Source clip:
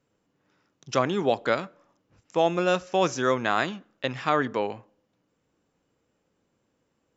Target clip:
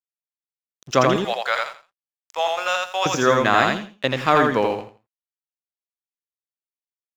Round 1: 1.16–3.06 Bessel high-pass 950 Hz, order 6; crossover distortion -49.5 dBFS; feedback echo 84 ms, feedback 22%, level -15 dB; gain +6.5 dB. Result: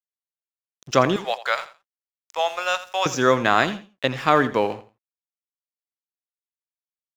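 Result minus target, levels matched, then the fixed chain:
echo-to-direct -12 dB
1.16–3.06 Bessel high-pass 950 Hz, order 6; crossover distortion -49.5 dBFS; feedback echo 84 ms, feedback 22%, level -3 dB; gain +6.5 dB

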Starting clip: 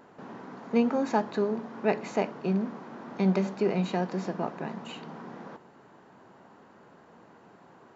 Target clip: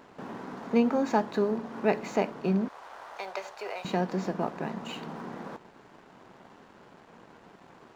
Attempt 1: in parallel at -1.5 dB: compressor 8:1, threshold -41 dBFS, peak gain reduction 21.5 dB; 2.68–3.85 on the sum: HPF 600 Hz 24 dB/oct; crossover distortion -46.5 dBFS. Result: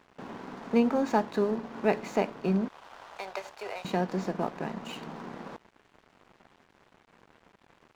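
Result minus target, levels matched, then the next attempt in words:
crossover distortion: distortion +7 dB
in parallel at -1.5 dB: compressor 8:1, threshold -41 dBFS, peak gain reduction 21.5 dB; 2.68–3.85 on the sum: HPF 600 Hz 24 dB/oct; crossover distortion -54.5 dBFS

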